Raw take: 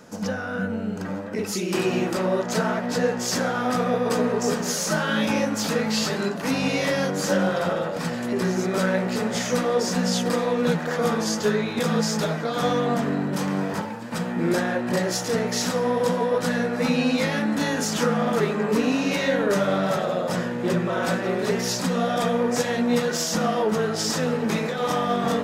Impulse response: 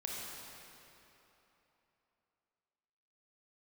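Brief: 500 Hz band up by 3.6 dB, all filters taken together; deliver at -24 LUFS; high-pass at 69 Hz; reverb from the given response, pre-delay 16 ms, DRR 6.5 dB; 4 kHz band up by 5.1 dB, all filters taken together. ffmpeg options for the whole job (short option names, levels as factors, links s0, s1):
-filter_complex "[0:a]highpass=69,equalizer=f=500:t=o:g=4,equalizer=f=4000:t=o:g=6.5,asplit=2[s0][s1];[1:a]atrim=start_sample=2205,adelay=16[s2];[s1][s2]afir=irnorm=-1:irlink=0,volume=0.398[s3];[s0][s3]amix=inputs=2:normalize=0,volume=0.668"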